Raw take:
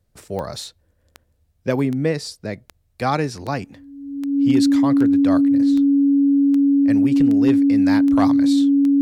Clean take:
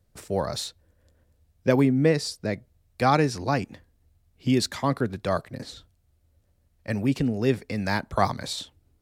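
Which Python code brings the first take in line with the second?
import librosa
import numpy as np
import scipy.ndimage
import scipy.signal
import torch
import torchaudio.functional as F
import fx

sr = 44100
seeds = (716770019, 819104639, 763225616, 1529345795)

y = fx.fix_declip(x, sr, threshold_db=-8.0)
y = fx.fix_declick_ar(y, sr, threshold=10.0)
y = fx.notch(y, sr, hz=280.0, q=30.0)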